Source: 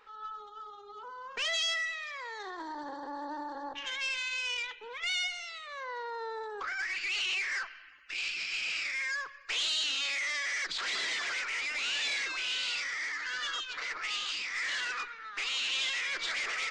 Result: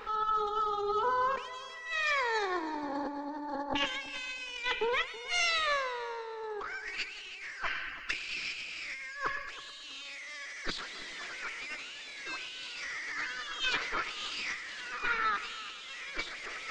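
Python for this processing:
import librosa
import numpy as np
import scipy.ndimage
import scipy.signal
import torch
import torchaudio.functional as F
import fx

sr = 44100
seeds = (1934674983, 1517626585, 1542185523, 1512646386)

y = fx.low_shelf(x, sr, hz=460.0, db=10.5)
y = fx.over_compress(y, sr, threshold_db=-41.0, ratio=-0.5)
y = fx.echo_heads(y, sr, ms=108, heads='first and third', feedback_pct=47, wet_db=-17.0)
y = y * librosa.db_to_amplitude(6.0)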